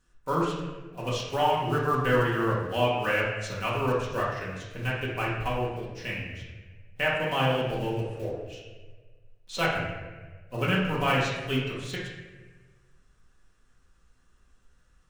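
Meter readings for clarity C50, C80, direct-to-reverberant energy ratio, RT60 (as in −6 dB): 1.0 dB, 4.0 dB, −6.0 dB, 1.4 s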